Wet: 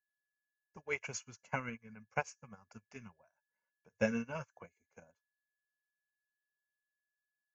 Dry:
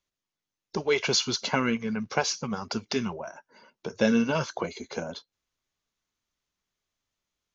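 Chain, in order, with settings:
dynamic equaliser 210 Hz, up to +4 dB, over −38 dBFS, Q 0.72
steady tone 1,700 Hz −53 dBFS
drawn EQ curve 110 Hz 0 dB, 160 Hz −8 dB, 370 Hz −16 dB, 520 Hz −6 dB, 920 Hz −5 dB, 1,600 Hz −4 dB, 2,500 Hz −1 dB, 3,700 Hz −25 dB, 6,200 Hz −5 dB, 8,900 Hz +15 dB
expander for the loud parts 2.5 to 1, over −46 dBFS
level −1 dB

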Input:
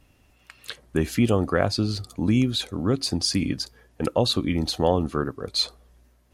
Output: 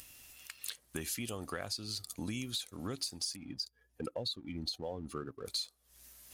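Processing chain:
0:03.36–0:05.46: expanding power law on the bin magnitudes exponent 1.6
first-order pre-emphasis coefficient 0.9
downward compressor 12 to 1, threshold −42 dBFS, peak gain reduction 19 dB
leveller curve on the samples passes 1
upward compression, threshold −52 dBFS
one half of a high-frequency compander encoder only
level +3.5 dB

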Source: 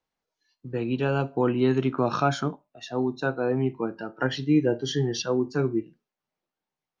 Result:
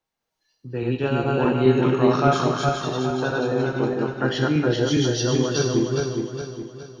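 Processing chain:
feedback delay that plays each chunk backwards 207 ms, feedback 65%, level 0 dB
on a send: high-shelf EQ 3,100 Hz +10 dB + convolution reverb RT60 1.1 s, pre-delay 4 ms, DRR 5 dB

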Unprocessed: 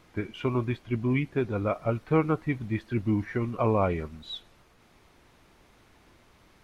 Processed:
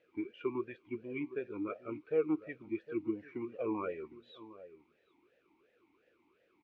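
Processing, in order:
slap from a distant wall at 130 metres, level −16 dB
formant filter swept between two vowels e-u 2.8 Hz

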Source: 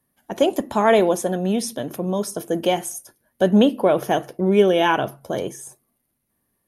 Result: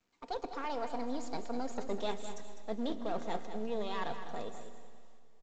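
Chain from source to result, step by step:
gain on one half-wave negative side −7 dB
source passing by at 0:02.27, 27 m/s, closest 5.2 metres
bass and treble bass −2 dB, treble +12 dB
comb filter 5.3 ms, depth 35%
reversed playback
downward compressor 8 to 1, threshold −43 dBFS, peak gain reduction 22.5 dB
reversed playback
speed change +23%
high-frequency loss of the air 110 metres
repeating echo 202 ms, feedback 25%, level −10 dB
on a send at −12.5 dB: convolution reverb RT60 2.5 s, pre-delay 90 ms
on the sum: level +10 dB
mu-law 128 kbit/s 16,000 Hz

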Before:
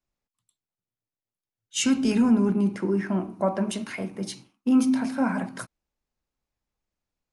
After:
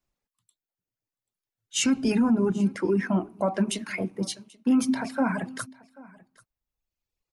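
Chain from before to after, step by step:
reverb reduction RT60 1.6 s
brickwall limiter −18.5 dBFS, peak gain reduction 6.5 dB
on a send: single-tap delay 786 ms −23 dB
on the sum: level +3.5 dB

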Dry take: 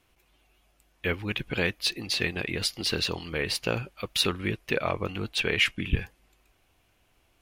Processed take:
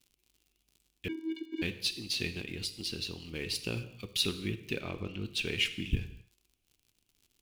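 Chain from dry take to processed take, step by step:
mu-law and A-law mismatch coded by A
0:02.41–0:03.33: downward compressor 2.5 to 1, threshold −31 dBFS, peak gain reduction 5.5 dB
0:04.79–0:05.26: low-pass filter 5,000 Hz 12 dB per octave
reverb whose tail is shaped and stops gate 290 ms falling, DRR 9.5 dB
0:01.08–0:01.62: channel vocoder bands 16, square 322 Hz
surface crackle 71 per second −45 dBFS
flat-topped bell 1,000 Hz −11 dB 2.3 octaves
level −4 dB

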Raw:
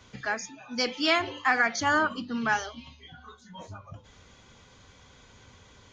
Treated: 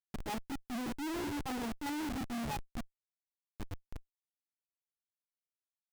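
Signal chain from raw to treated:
gain on a spectral selection 0:02.23–0:02.68, 200–1,300 Hz −8 dB
formant resonators in series u
comparator with hysteresis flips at −49 dBFS
brickwall limiter −48.5 dBFS, peak gain reduction 11.5 dB
level +12.5 dB

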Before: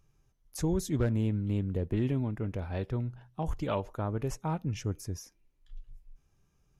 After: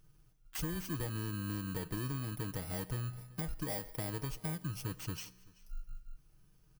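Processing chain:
samples in bit-reversed order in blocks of 32 samples
comb filter 6.4 ms, depth 53%
downward compressor, threshold −36 dBFS, peak gain reduction 14 dB
tuned comb filter 62 Hz, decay 1.8 s, harmonics all, mix 40%
soft clipping −34.5 dBFS, distortion −20 dB
single-tap delay 383 ms −23.5 dB
level +6 dB

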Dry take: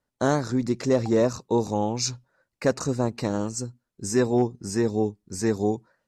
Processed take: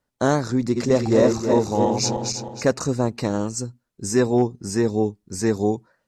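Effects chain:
0:00.59–0:02.63: feedback delay that plays each chunk backwards 158 ms, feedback 61%, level −4 dB
level +3 dB

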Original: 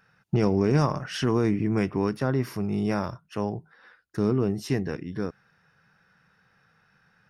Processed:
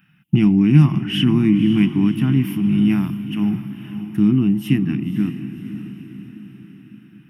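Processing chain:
drawn EQ curve 100 Hz 0 dB, 150 Hz +13 dB, 320 Hz +10 dB, 500 Hz −29 dB, 710 Hz −7 dB, 1,600 Hz −2 dB, 3,000 Hz +15 dB, 4,200 Hz −10 dB, 6,200 Hz −9 dB, 12,000 Hz +11 dB
on a send: feedback delay with all-pass diffusion 540 ms, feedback 52%, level −11 dB

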